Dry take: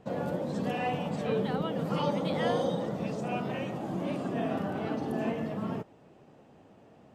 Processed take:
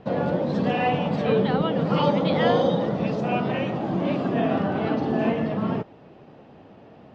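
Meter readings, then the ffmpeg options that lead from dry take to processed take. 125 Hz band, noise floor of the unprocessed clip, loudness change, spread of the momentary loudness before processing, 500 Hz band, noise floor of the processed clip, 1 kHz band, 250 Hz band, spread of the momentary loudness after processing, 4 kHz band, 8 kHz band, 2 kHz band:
+8.5 dB, -57 dBFS, +8.5 dB, 5 LU, +8.5 dB, -49 dBFS, +8.5 dB, +8.5 dB, 5 LU, +8.0 dB, no reading, +8.5 dB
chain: -af "lowpass=f=4800:w=0.5412,lowpass=f=4800:w=1.3066,volume=2.66"

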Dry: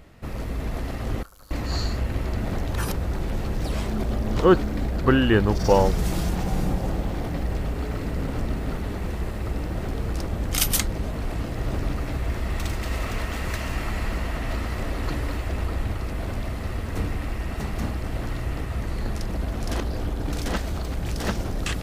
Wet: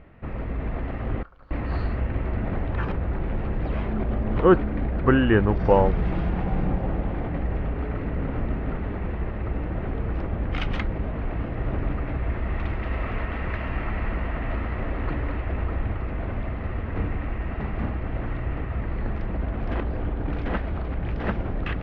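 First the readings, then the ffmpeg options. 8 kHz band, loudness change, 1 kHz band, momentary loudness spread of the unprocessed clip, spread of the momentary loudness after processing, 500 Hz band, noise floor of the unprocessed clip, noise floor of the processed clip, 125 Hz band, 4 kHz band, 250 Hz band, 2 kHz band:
under -35 dB, -0.5 dB, 0.0 dB, 10 LU, 10 LU, 0.0 dB, -31 dBFS, -31 dBFS, 0.0 dB, -10.0 dB, 0.0 dB, -0.5 dB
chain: -af "lowpass=f=2500:w=0.5412,lowpass=f=2500:w=1.3066"

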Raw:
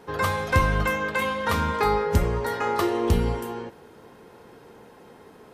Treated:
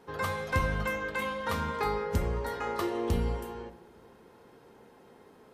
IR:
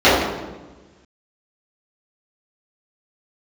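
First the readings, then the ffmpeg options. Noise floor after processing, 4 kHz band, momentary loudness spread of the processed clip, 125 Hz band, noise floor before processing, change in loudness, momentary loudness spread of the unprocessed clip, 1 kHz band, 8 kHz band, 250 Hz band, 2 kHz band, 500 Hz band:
-57 dBFS, -7.5 dB, 6 LU, -7.5 dB, -50 dBFS, -7.5 dB, 8 LU, -8.0 dB, -8.0 dB, -7.5 dB, -7.0 dB, -7.5 dB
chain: -filter_complex "[0:a]asplit=2[s0][s1];[1:a]atrim=start_sample=2205[s2];[s1][s2]afir=irnorm=-1:irlink=0,volume=0.00891[s3];[s0][s3]amix=inputs=2:normalize=0,volume=0.398"

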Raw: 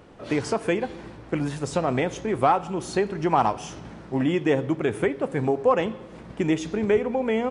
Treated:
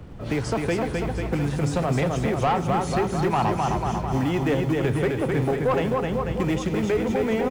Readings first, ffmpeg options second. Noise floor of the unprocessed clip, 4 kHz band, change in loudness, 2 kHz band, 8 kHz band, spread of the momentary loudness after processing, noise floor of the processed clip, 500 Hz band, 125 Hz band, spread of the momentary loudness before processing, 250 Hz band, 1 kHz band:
-44 dBFS, +1.5 dB, +1.0 dB, +1.0 dB, +1.0 dB, 3 LU, -31 dBFS, 0.0 dB, +7.0 dB, 10 LU, +1.5 dB, 0.0 dB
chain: -filter_complex "[0:a]acrossover=split=380[s0][s1];[s0]acompressor=threshold=0.0158:ratio=3[s2];[s2][s1]amix=inputs=2:normalize=0,acrossover=split=260[s3][s4];[s3]acrusher=samples=40:mix=1:aa=0.000001[s5];[s5][s4]amix=inputs=2:normalize=0,lowshelf=f=160:g=10.5,asplit=2[s6][s7];[s7]aecho=0:1:260|494|704.6|894.1|1065:0.631|0.398|0.251|0.158|0.1[s8];[s6][s8]amix=inputs=2:normalize=0,asoftclip=type=tanh:threshold=0.15,bass=f=250:g=8,treble=f=4000:g=-1"

